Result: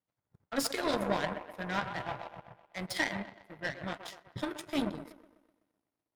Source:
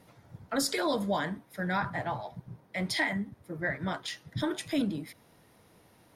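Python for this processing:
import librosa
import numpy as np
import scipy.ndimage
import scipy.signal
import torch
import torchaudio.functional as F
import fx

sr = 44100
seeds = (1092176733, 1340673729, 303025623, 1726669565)

y = fx.echo_wet_bandpass(x, sr, ms=126, feedback_pct=70, hz=720.0, wet_db=-3.5)
y = fx.power_curve(y, sr, exponent=2.0)
y = y * librosa.db_to_amplitude(3.0)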